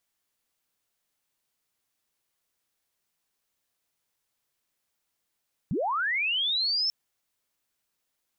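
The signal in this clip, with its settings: sweep linear 120 Hz -> 5.4 kHz -25 dBFS -> -23.5 dBFS 1.19 s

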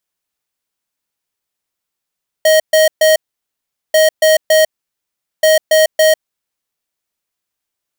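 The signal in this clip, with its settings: beep pattern square 628 Hz, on 0.15 s, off 0.13 s, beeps 3, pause 0.78 s, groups 3, -9 dBFS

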